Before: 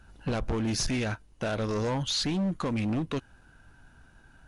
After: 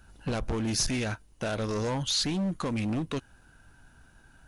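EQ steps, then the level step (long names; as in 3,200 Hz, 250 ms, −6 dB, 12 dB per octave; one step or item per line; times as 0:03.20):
high-shelf EQ 7,000 Hz +9.5 dB
−1.0 dB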